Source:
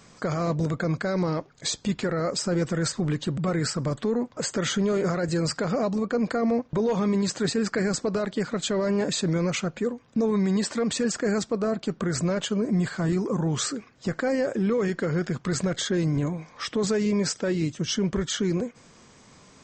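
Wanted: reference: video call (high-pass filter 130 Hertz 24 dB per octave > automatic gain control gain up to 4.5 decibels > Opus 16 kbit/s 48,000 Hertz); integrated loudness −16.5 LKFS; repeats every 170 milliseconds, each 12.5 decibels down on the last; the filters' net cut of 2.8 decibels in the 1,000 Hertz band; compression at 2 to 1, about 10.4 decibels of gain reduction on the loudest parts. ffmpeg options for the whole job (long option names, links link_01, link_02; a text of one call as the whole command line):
ffmpeg -i in.wav -af "equalizer=frequency=1000:width_type=o:gain=-4,acompressor=threshold=-41dB:ratio=2,highpass=frequency=130:width=0.5412,highpass=frequency=130:width=1.3066,aecho=1:1:170|340|510:0.237|0.0569|0.0137,dynaudnorm=maxgain=4.5dB,volume=19dB" -ar 48000 -c:a libopus -b:a 16k out.opus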